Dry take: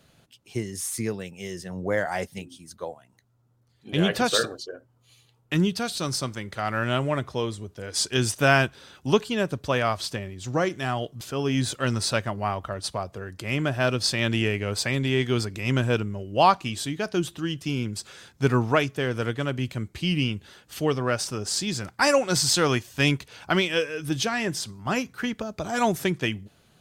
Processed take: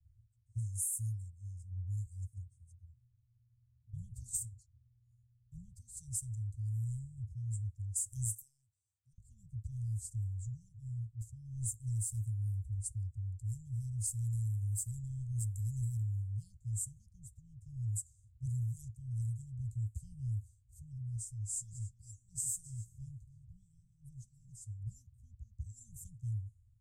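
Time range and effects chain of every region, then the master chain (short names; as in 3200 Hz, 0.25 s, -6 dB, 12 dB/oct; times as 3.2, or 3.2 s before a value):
8.32–9.18 HPF 550 Hz + compressor, threshold -33 dBFS
21.16–24.83 comb 6.4 ms, depth 45% + compressor 1.5:1, threshold -37 dBFS + echo 0.286 s -12 dB
whole clip: Chebyshev band-stop 110–7400 Hz, order 5; low-pass opened by the level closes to 1500 Hz, open at -31.5 dBFS; compressor, threshold -36 dBFS; gain +3 dB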